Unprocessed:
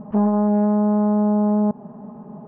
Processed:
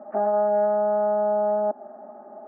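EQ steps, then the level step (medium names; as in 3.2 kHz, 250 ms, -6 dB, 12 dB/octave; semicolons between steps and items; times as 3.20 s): high-pass 410 Hz 24 dB/octave; low-pass 1.5 kHz 12 dB/octave; static phaser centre 670 Hz, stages 8; +6.5 dB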